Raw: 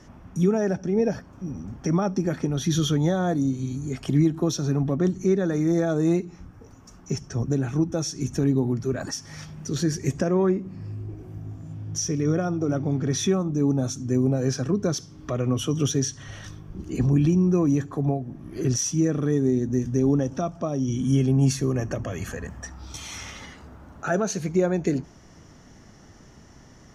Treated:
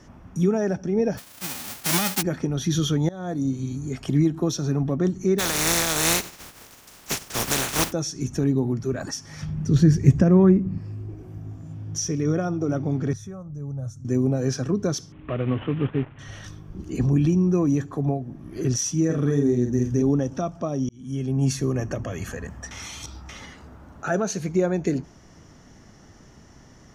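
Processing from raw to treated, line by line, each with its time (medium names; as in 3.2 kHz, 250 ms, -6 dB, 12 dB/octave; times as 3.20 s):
1.17–2.21 s: formants flattened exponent 0.1
3.09–3.50 s: fade in, from -21 dB
5.38–7.91 s: spectral contrast reduction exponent 0.23
9.42–10.78 s: tone controls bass +13 dB, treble -6 dB
13.13–14.05 s: FFT filter 120 Hz 0 dB, 190 Hz -14 dB, 340 Hz -23 dB, 520 Hz -10 dB, 880 Hz -16 dB, 1.4 kHz -12 dB, 2.9 kHz -27 dB, 8 kHz -12 dB
15.12–16.19 s: CVSD coder 16 kbps
19.05–20.02 s: doubling 49 ms -4 dB
20.89–21.58 s: fade in
22.71–23.29 s: reverse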